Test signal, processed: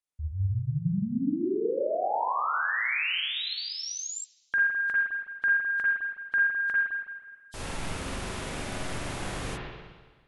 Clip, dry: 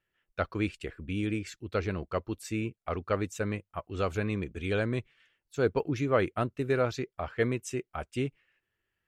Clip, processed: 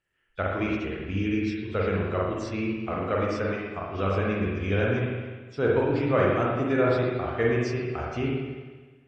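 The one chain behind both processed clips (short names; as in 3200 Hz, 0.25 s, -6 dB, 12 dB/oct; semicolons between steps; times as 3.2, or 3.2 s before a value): nonlinear frequency compression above 3000 Hz 1.5:1; spring tank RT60 1.4 s, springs 41/52 ms, chirp 80 ms, DRR -4 dB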